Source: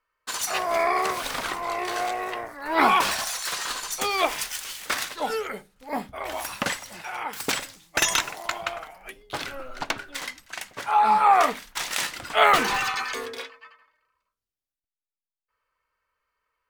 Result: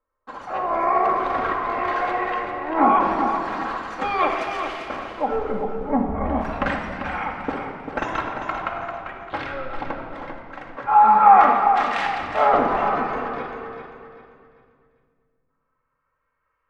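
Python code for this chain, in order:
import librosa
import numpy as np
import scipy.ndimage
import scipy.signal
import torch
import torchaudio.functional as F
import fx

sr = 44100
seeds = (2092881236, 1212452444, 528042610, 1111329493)

y = fx.riaa(x, sr, side='playback', at=(5.31, 6.41))
y = fx.filter_lfo_lowpass(y, sr, shape='saw_up', hz=0.41, low_hz=750.0, high_hz=2300.0, q=0.97)
y = fx.echo_feedback(y, sr, ms=394, feedback_pct=32, wet_db=-8.0)
y = fx.room_shoebox(y, sr, seeds[0], volume_m3=3700.0, walls='mixed', distance_m=2.2)
y = F.gain(torch.from_numpy(y), 1.5).numpy()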